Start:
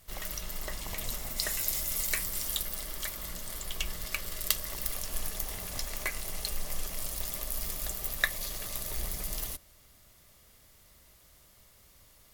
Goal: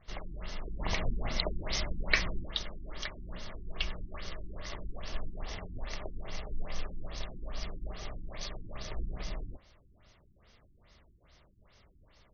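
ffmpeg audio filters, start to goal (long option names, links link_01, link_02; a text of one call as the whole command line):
ffmpeg -i in.wav -filter_complex "[0:a]asettb=1/sr,asplit=3[link_01][link_02][link_03];[link_01]atrim=end=0.794[link_04];[link_02]atrim=start=0.79:end=2.46,asetpts=PTS-STARTPTS,afade=type=in:duration=0.004:curve=qsin,afade=type=out:start_time=1.666:duration=0.004:curve=qsin,acontrast=67[link_05];[link_03]atrim=start=2.456[link_06];[link_04][link_05]acrossfade=duration=0.004:curve1=hsin:curve2=qsin[link_07];[link_07][link_06]acrossfade=duration=0.004:curve1=qsin:curve2=hsin,bandreject=frequency=263.6:width_type=h:width=4,bandreject=frequency=527.2:width_type=h:width=4,bandreject=frequency=790.8:width_type=h:width=4,bandreject=frequency=1054.4:width_type=h:width=4,bandreject=frequency=1318:width_type=h:width=4,bandreject=frequency=1581.6:width_type=h:width=4,afftfilt=real='re*lt(b*sr/1024,350*pow(6600/350,0.5+0.5*sin(2*PI*2.4*pts/sr)))':imag='im*lt(b*sr/1024,350*pow(6600/350,0.5+0.5*sin(2*PI*2.4*pts/sr)))':win_size=1024:overlap=0.75,volume=1dB" out.wav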